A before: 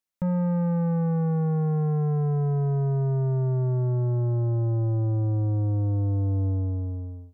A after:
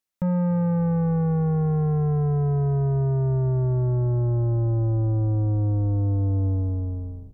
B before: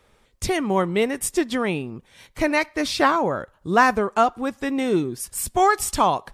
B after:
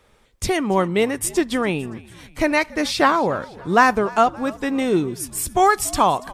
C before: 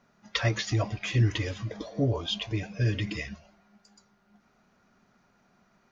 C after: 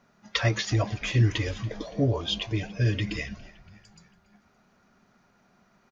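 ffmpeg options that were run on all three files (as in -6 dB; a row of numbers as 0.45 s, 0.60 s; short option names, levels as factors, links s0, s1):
-filter_complex "[0:a]asplit=5[s0][s1][s2][s3][s4];[s1]adelay=284,afreqshift=-71,volume=0.0891[s5];[s2]adelay=568,afreqshift=-142,volume=0.0501[s6];[s3]adelay=852,afreqshift=-213,volume=0.0279[s7];[s4]adelay=1136,afreqshift=-284,volume=0.0157[s8];[s0][s5][s6][s7][s8]amix=inputs=5:normalize=0,volume=1.26"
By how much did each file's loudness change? +2.0 LU, +2.0 LU, +2.0 LU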